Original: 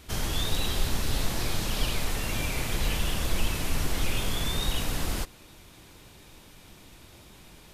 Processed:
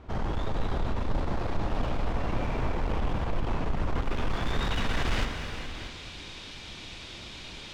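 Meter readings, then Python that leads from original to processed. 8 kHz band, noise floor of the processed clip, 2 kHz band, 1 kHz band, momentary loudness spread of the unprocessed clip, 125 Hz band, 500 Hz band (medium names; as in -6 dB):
-15.0 dB, -43 dBFS, -1.5 dB, +3.5 dB, 2 LU, +0.5 dB, +2.5 dB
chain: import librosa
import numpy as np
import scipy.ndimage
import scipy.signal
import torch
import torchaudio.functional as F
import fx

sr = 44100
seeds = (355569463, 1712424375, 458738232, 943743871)

p1 = fx.tracing_dist(x, sr, depth_ms=0.1)
p2 = fx.peak_eq(p1, sr, hz=6700.0, db=12.0, octaves=2.3)
p3 = fx.rider(p2, sr, range_db=10, speed_s=0.5)
p4 = p2 + (p3 * 10.0 ** (1.0 / 20.0))
p5 = fx.filter_sweep_lowpass(p4, sr, from_hz=940.0, to_hz=3400.0, start_s=3.73, end_s=5.97, q=1.2)
p6 = np.clip(10.0 ** (21.5 / 20.0) * p5, -1.0, 1.0) / 10.0 ** (21.5 / 20.0)
p7 = p6 + 10.0 ** (-12.5 / 20.0) * np.pad(p6, (int(634 * sr / 1000.0), 0))[:len(p6)]
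p8 = fx.rev_gated(p7, sr, seeds[0], gate_ms=490, shape='flat', drr_db=4.5)
y = p8 * 10.0 ** (-4.0 / 20.0)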